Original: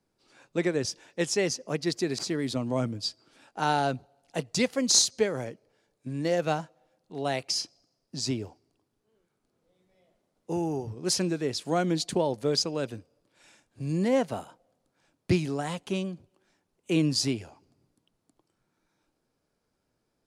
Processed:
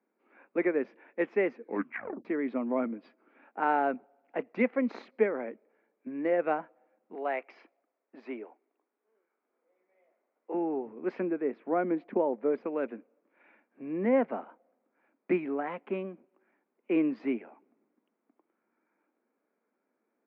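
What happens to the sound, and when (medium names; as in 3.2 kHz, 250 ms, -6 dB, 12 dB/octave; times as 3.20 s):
1.54 s: tape stop 0.71 s
7.15–10.54 s: high-pass 430 Hz
11.20–12.64 s: treble shelf 2.5 kHz -11.5 dB
whole clip: Chebyshev band-pass 220–2300 Hz, order 4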